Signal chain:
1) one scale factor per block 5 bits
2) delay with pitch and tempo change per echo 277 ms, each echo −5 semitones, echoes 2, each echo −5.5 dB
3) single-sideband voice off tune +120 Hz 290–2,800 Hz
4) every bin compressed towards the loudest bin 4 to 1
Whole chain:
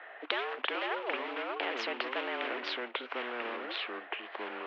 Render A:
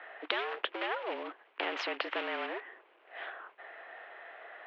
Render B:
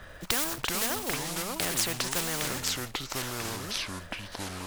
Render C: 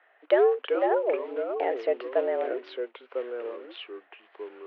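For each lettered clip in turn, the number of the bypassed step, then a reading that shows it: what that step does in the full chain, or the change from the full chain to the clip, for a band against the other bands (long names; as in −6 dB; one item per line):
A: 2, change in momentary loudness spread +10 LU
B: 3, 250 Hz band +6.5 dB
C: 4, 500 Hz band +14.0 dB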